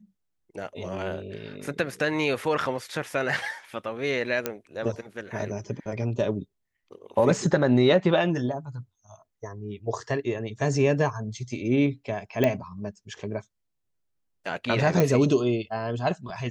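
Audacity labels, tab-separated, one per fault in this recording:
4.460000	4.460000	pop -11 dBFS
12.440000	12.440000	pop -11 dBFS
15.000000	15.000000	pop -9 dBFS

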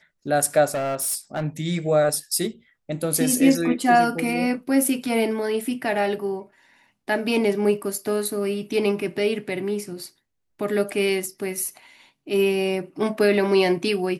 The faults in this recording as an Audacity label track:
0.700000	1.440000	clipped -22 dBFS

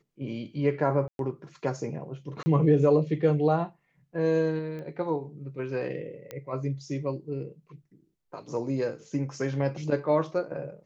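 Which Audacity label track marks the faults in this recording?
1.080000	1.190000	dropout 112 ms
2.430000	2.460000	dropout 30 ms
4.790000	4.790000	pop -29 dBFS
6.310000	6.310000	pop -22 dBFS

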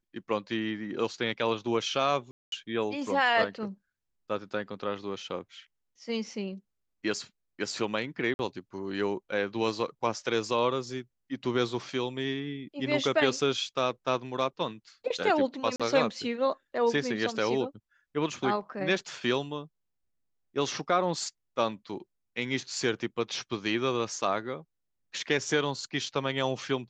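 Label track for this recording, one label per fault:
2.310000	2.520000	dropout 212 ms
8.340000	8.390000	dropout 51 ms
15.760000	15.800000	dropout 36 ms

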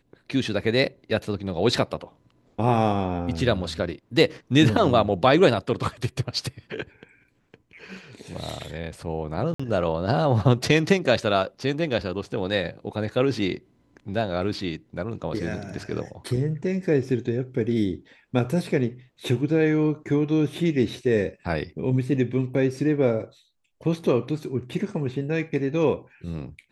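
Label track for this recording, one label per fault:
9.540000	9.600000	dropout 55 ms

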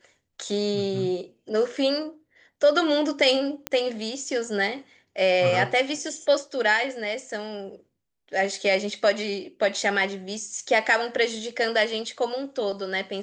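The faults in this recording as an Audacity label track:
3.670000	3.670000	pop -10 dBFS

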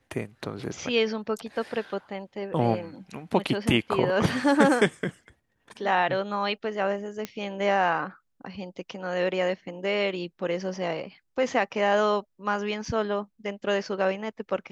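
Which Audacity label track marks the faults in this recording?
7.250000	7.250000	pop -16 dBFS
12.850000	12.850000	dropout 3.9 ms

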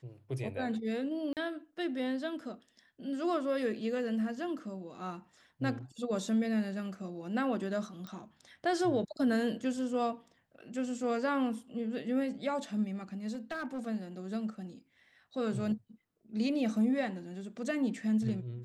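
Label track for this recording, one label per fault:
1.330000	1.370000	dropout 38 ms
8.070000	8.070000	pop -29 dBFS
13.340000	13.790000	clipped -33.5 dBFS

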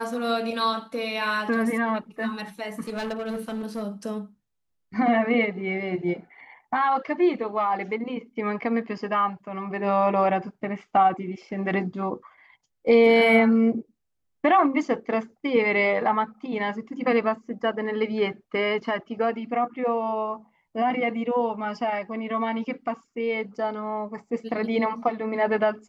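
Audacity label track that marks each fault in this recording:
2.870000	3.840000	clipped -26.5 dBFS

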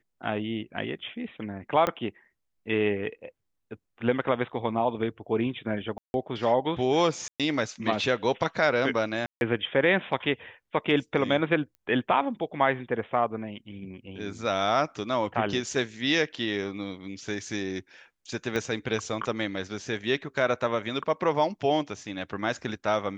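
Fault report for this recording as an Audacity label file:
1.870000	1.870000	pop -12 dBFS
5.980000	6.140000	dropout 161 ms
7.280000	7.400000	dropout 117 ms
9.260000	9.410000	dropout 151 ms
11.750000	11.750000	pop -35 dBFS
18.560000	18.560000	pop -16 dBFS

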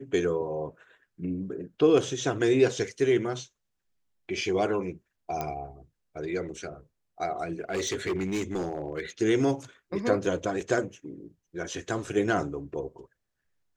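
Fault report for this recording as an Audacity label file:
5.410000	5.410000	pop -17 dBFS
7.700000	9.010000	clipped -25 dBFS

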